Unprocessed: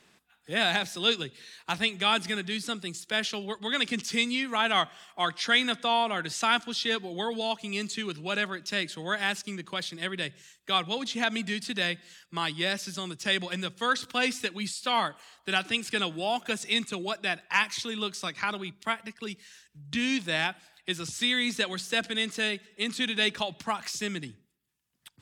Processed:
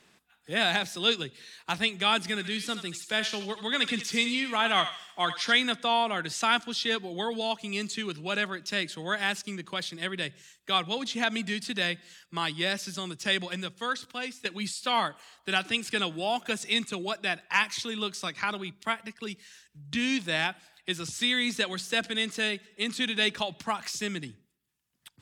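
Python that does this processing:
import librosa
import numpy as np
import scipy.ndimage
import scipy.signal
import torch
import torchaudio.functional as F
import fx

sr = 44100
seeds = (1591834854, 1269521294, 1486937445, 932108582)

y = fx.echo_thinned(x, sr, ms=77, feedback_pct=46, hz=1100.0, wet_db=-8.0, at=(2.39, 5.51), fade=0.02)
y = fx.edit(y, sr, fx.fade_out_to(start_s=13.32, length_s=1.13, floor_db=-13.0), tone=tone)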